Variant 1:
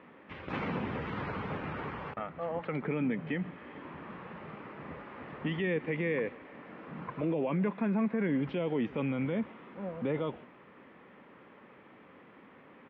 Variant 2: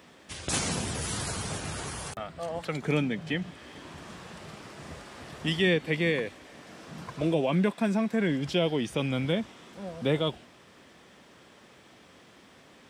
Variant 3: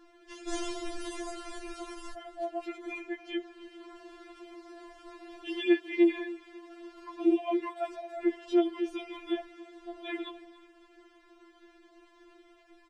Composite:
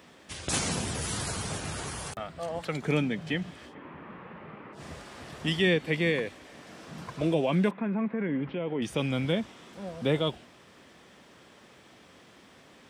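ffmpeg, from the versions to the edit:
-filter_complex "[0:a]asplit=2[a][b];[1:a]asplit=3[c][d][e];[c]atrim=end=3.75[f];[a]atrim=start=3.65:end=4.82[g];[d]atrim=start=4.72:end=7.712[h];[b]atrim=start=7.708:end=8.822[i];[e]atrim=start=8.818[j];[f][g]acrossfade=d=0.1:c1=tri:c2=tri[k];[k][h]acrossfade=d=0.1:c1=tri:c2=tri[l];[l][i]acrossfade=d=0.004:c1=hsin:c2=hsin[m];[m][j]acrossfade=d=0.004:c1=hsin:c2=hsin"

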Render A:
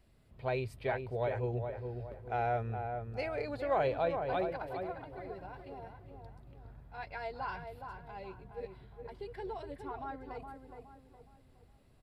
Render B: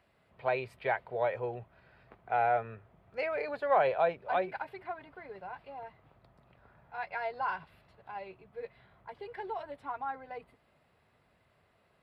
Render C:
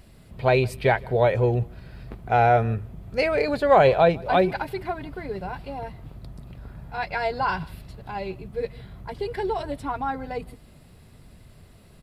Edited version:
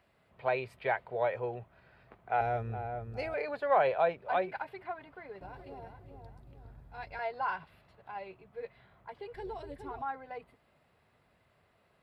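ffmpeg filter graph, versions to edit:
-filter_complex "[0:a]asplit=3[a][b][c];[1:a]asplit=4[d][e][f][g];[d]atrim=end=2.412[h];[a]atrim=start=2.408:end=3.342[i];[e]atrim=start=3.338:end=5.412[j];[b]atrim=start=5.408:end=7.192[k];[f]atrim=start=7.188:end=9.342[l];[c]atrim=start=9.338:end=10.022[m];[g]atrim=start=10.018[n];[h][i]acrossfade=d=0.004:c1=hsin:c2=hsin[o];[o][j]acrossfade=d=0.004:c1=hsin:c2=hsin[p];[p][k]acrossfade=d=0.004:c1=hsin:c2=hsin[q];[q][l]acrossfade=d=0.004:c1=hsin:c2=hsin[r];[r][m]acrossfade=d=0.004:c1=hsin:c2=hsin[s];[s][n]acrossfade=d=0.004:c1=hsin:c2=hsin"

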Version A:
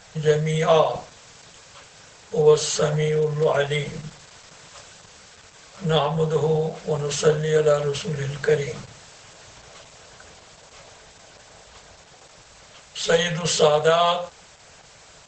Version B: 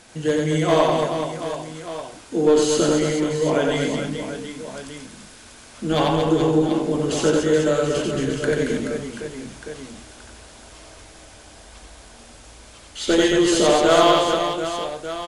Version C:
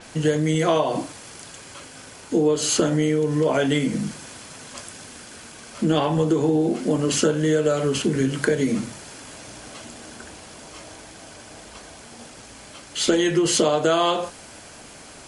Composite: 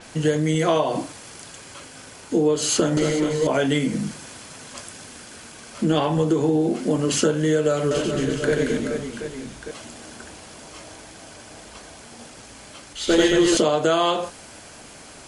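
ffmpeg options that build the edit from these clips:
-filter_complex "[1:a]asplit=3[a][b][c];[2:a]asplit=4[d][e][f][g];[d]atrim=end=2.972[h];[a]atrim=start=2.968:end=3.472[i];[e]atrim=start=3.468:end=7.912[j];[b]atrim=start=7.908:end=9.712[k];[f]atrim=start=9.708:end=12.932[l];[c]atrim=start=12.928:end=13.572[m];[g]atrim=start=13.568[n];[h][i]acrossfade=d=0.004:c1=hsin:c2=hsin[o];[o][j]acrossfade=d=0.004:c1=hsin:c2=hsin[p];[p][k]acrossfade=d=0.004:c1=hsin:c2=hsin[q];[q][l]acrossfade=d=0.004:c1=hsin:c2=hsin[r];[r][m]acrossfade=d=0.004:c1=hsin:c2=hsin[s];[s][n]acrossfade=d=0.004:c1=hsin:c2=hsin"

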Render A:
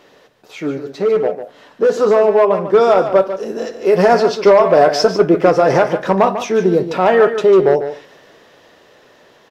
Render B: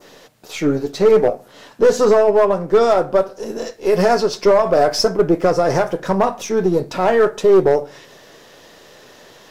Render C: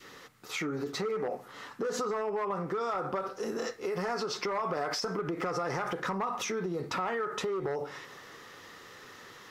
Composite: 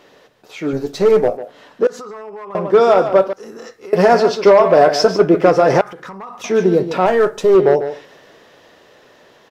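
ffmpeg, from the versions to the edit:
-filter_complex "[1:a]asplit=2[a][b];[2:a]asplit=3[c][d][e];[0:a]asplit=6[f][g][h][i][j][k];[f]atrim=end=0.732[l];[a]atrim=start=0.728:end=1.372[m];[g]atrim=start=1.368:end=1.872[n];[c]atrim=start=1.868:end=2.552[o];[h]atrim=start=2.548:end=3.332[p];[d]atrim=start=3.328:end=3.932[q];[i]atrim=start=3.928:end=5.812[r];[e]atrim=start=5.808:end=6.442[s];[j]atrim=start=6.438:end=7.062[t];[b]atrim=start=7.058:end=7.552[u];[k]atrim=start=7.548[v];[l][m]acrossfade=d=0.004:c1=hsin:c2=hsin[w];[w][n]acrossfade=d=0.004:c1=hsin:c2=hsin[x];[x][o]acrossfade=d=0.004:c1=hsin:c2=hsin[y];[y][p]acrossfade=d=0.004:c1=hsin:c2=hsin[z];[z][q]acrossfade=d=0.004:c1=hsin:c2=hsin[aa];[aa][r]acrossfade=d=0.004:c1=hsin:c2=hsin[ab];[ab][s]acrossfade=d=0.004:c1=hsin:c2=hsin[ac];[ac][t]acrossfade=d=0.004:c1=hsin:c2=hsin[ad];[ad][u]acrossfade=d=0.004:c1=hsin:c2=hsin[ae];[ae][v]acrossfade=d=0.004:c1=hsin:c2=hsin"

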